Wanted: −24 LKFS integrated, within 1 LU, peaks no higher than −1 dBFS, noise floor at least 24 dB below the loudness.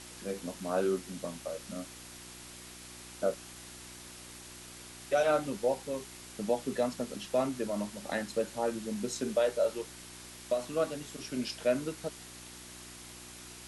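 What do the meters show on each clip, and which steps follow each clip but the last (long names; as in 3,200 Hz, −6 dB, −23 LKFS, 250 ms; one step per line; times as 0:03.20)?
mains hum 60 Hz; hum harmonics up to 360 Hz; level of the hum −53 dBFS; background noise floor −49 dBFS; target noise floor −58 dBFS; integrated loudness −34.0 LKFS; sample peak −16.5 dBFS; target loudness −24.0 LKFS
→ hum removal 60 Hz, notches 6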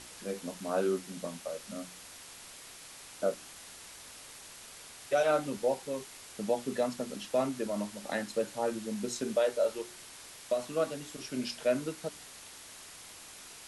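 mains hum none found; background noise floor −50 dBFS; target noise floor −58 dBFS
→ broadband denoise 8 dB, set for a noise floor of −50 dBFS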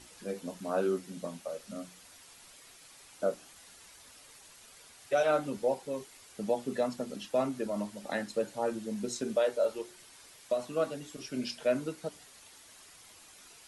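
background noise floor −56 dBFS; target noise floor −58 dBFS
→ broadband denoise 6 dB, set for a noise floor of −56 dBFS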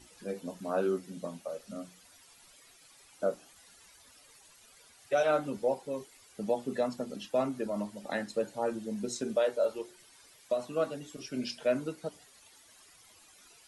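background noise floor −59 dBFS; integrated loudness −34.0 LKFS; sample peak −17.0 dBFS; target loudness −24.0 LKFS
→ level +10 dB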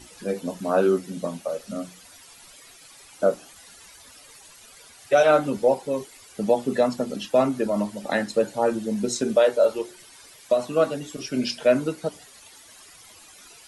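integrated loudness −24.0 LKFS; sample peak −7.0 dBFS; background noise floor −49 dBFS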